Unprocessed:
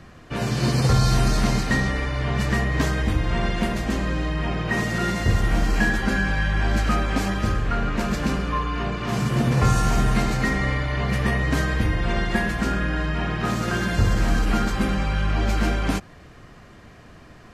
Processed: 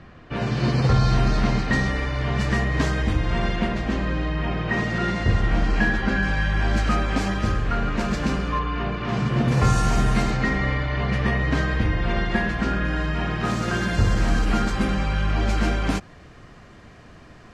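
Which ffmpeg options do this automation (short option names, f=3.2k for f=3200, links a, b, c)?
-af "asetnsamples=n=441:p=0,asendcmd='1.73 lowpass f 7200;3.56 lowpass f 4200;6.23 lowpass f 7700;8.59 lowpass f 4000;9.48 lowpass f 9500;10.31 lowpass f 4600;12.85 lowpass f 8800',lowpass=3.8k"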